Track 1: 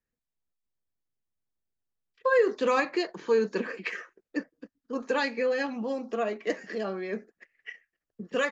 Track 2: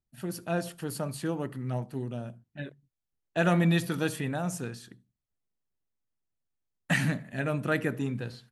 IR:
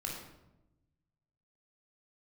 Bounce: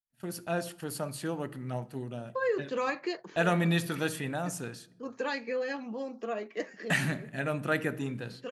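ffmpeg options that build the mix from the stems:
-filter_complex "[0:a]adelay=100,volume=-5.5dB[link_01];[1:a]lowshelf=frequency=280:gain=-6,agate=range=-19dB:threshold=-47dB:ratio=16:detection=peak,volume=-0.5dB,asplit=3[link_02][link_03][link_04];[link_03]volume=-18.5dB[link_05];[link_04]apad=whole_len=379710[link_06];[link_01][link_06]sidechaincompress=threshold=-37dB:ratio=8:attack=45:release=1150[link_07];[2:a]atrim=start_sample=2205[link_08];[link_05][link_08]afir=irnorm=-1:irlink=0[link_09];[link_07][link_02][link_09]amix=inputs=3:normalize=0"

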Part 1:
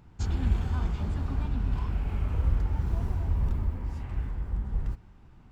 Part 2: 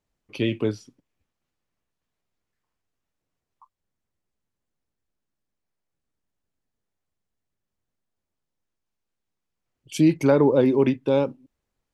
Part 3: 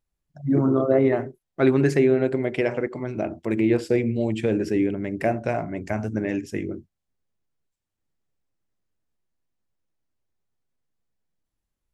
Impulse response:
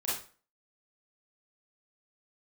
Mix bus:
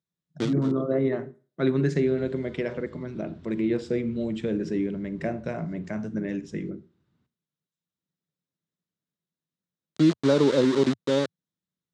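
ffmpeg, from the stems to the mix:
-filter_complex "[0:a]equalizer=frequency=960:width=1.5:gain=-5,adelay=1750,volume=-13dB,asplit=2[link_01][link_02];[link_02]volume=-20dB[link_03];[1:a]equalizer=frequency=3800:width=0.36:gain=-5.5,aeval=exprs='val(0)*gte(abs(val(0)),0.0631)':channel_layout=same,volume=-1.5dB[link_04];[2:a]equalizer=frequency=170:width=3.1:gain=13,bandreject=frequency=4500:width=14,volume=-6.5dB,asplit=3[link_05][link_06][link_07];[link_06]volume=-20.5dB[link_08];[link_07]apad=whole_len=526113[link_09];[link_04][link_09]sidechaincompress=threshold=-32dB:ratio=10:attack=33:release=1490[link_10];[3:a]atrim=start_sample=2205[link_11];[link_03][link_08]amix=inputs=2:normalize=0[link_12];[link_12][link_11]afir=irnorm=-1:irlink=0[link_13];[link_01][link_10][link_05][link_13]amix=inputs=4:normalize=0,highpass=frequency=100:width=0.5412,highpass=frequency=100:width=1.3066,equalizer=frequency=110:width_type=q:width=4:gain=-5,equalizer=frequency=780:width_type=q:width=4:gain=-8,equalizer=frequency=2500:width_type=q:width=4:gain=-5,equalizer=frequency=3800:width_type=q:width=4:gain=7,lowpass=frequency=7500:width=0.5412,lowpass=frequency=7500:width=1.3066"

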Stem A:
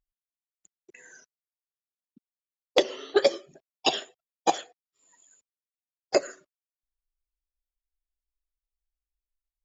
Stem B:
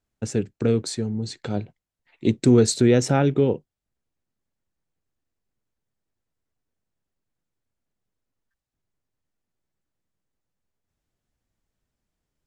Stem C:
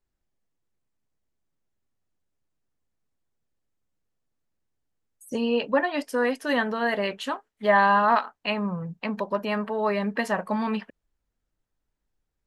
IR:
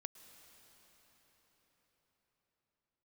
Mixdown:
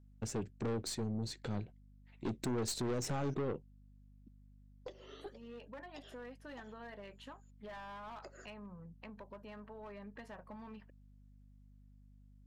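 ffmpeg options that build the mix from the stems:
-filter_complex "[0:a]acrossover=split=140[link_01][link_02];[link_02]acompressor=threshold=-25dB:ratio=6[link_03];[link_01][link_03]amix=inputs=2:normalize=0,adelay=2100,volume=-2.5dB[link_04];[1:a]acompressor=threshold=-18dB:ratio=4,aeval=exprs='val(0)+0.00282*(sin(2*PI*50*n/s)+sin(2*PI*2*50*n/s)/2+sin(2*PI*3*50*n/s)/3+sin(2*PI*4*50*n/s)/4+sin(2*PI*5*50*n/s)/5)':channel_layout=same,volume=-7dB[link_05];[2:a]asoftclip=type=hard:threshold=-20.5dB,volume=-15dB,asplit=2[link_06][link_07];[link_07]apad=whole_len=517971[link_08];[link_04][link_08]sidechaincompress=threshold=-56dB:ratio=10:attack=48:release=196[link_09];[link_09][link_06]amix=inputs=2:normalize=0,highshelf=frequency=4200:gain=-8,acompressor=threshold=-47dB:ratio=4,volume=0dB[link_10];[link_05][link_10]amix=inputs=2:normalize=0,aeval=exprs='(tanh(44.7*val(0)+0.4)-tanh(0.4))/44.7':channel_layout=same"

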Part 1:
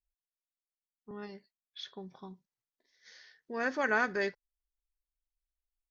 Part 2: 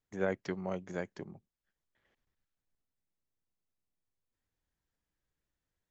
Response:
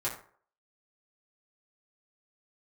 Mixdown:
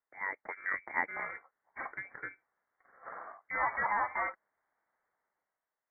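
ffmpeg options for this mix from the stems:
-filter_complex "[0:a]acompressor=threshold=-34dB:ratio=6,acrusher=samples=14:mix=1:aa=0.000001,asoftclip=type=hard:threshold=-37dB,volume=1.5dB[link_01];[1:a]asoftclip=type=tanh:threshold=-20.5dB,volume=1.5dB[link_02];[link_01][link_02]amix=inputs=2:normalize=0,highpass=720,dynaudnorm=framelen=160:gausssize=9:maxgain=11.5dB,lowpass=frequency=2100:width_type=q:width=0.5098,lowpass=frequency=2100:width_type=q:width=0.6013,lowpass=frequency=2100:width_type=q:width=0.9,lowpass=frequency=2100:width_type=q:width=2.563,afreqshift=-2500"

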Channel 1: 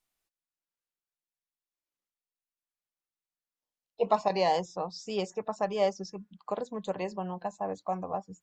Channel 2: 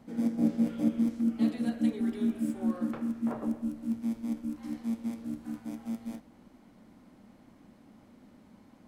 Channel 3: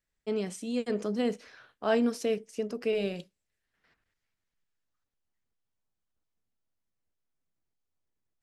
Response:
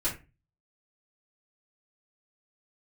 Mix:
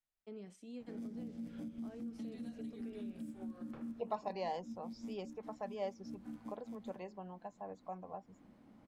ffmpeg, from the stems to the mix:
-filter_complex "[0:a]bandreject=frequency=1200:width=15,volume=-13dB,asplit=2[link_01][link_02];[1:a]acrossover=split=210|3000[link_03][link_04][link_05];[link_04]acompressor=threshold=-40dB:ratio=6[link_06];[link_03][link_06][link_05]amix=inputs=3:normalize=0,adelay=800,volume=-5.5dB[link_07];[2:a]acrossover=split=330[link_08][link_09];[link_09]acompressor=threshold=-37dB:ratio=6[link_10];[link_08][link_10]amix=inputs=2:normalize=0,volume=-15.5dB[link_11];[link_02]apad=whole_len=426625[link_12];[link_07][link_12]sidechaincompress=threshold=-53dB:ratio=4:attack=32:release=250[link_13];[link_13][link_11]amix=inputs=2:normalize=0,alimiter=level_in=13.5dB:limit=-24dB:level=0:latency=1:release=122,volume=-13.5dB,volume=0dB[link_14];[link_01][link_14]amix=inputs=2:normalize=0,highshelf=frequency=4600:gain=-8"

